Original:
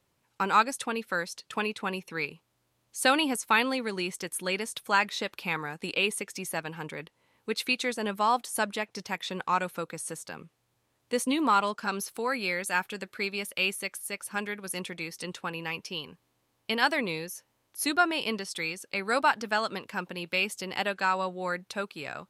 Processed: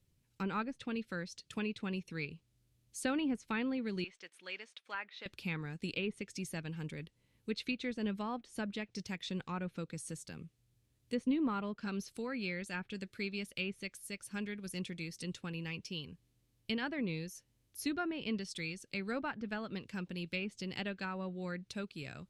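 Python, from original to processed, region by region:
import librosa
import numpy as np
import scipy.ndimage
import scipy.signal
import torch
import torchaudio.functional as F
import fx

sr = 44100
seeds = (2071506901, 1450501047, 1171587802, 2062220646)

y = fx.chain(x, sr, fx.block_float(bits=5),
    fx.bandpass_edges(low_hz=790.0, high_hz=2700.0), at=(4.04, 5.26))
y = fx.env_lowpass_down(y, sr, base_hz=1800.0, full_db=-23.5)
y = fx.tone_stack(y, sr, knobs='10-0-1')
y = y * 10.0 ** (15.5 / 20.0)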